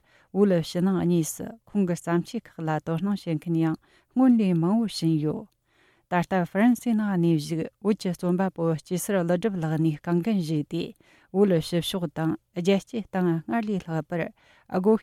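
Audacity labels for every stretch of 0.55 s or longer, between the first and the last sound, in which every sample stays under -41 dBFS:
5.440000	6.110000	silence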